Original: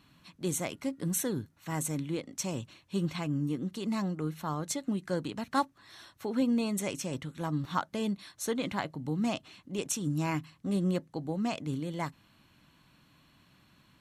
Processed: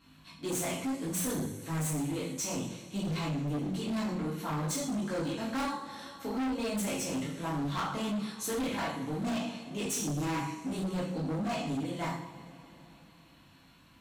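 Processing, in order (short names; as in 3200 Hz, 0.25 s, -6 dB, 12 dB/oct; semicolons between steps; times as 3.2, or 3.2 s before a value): chorus 0.62 Hz, delay 19 ms, depth 4 ms; two-slope reverb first 0.57 s, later 3.8 s, from -21 dB, DRR -5 dB; overloaded stage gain 30 dB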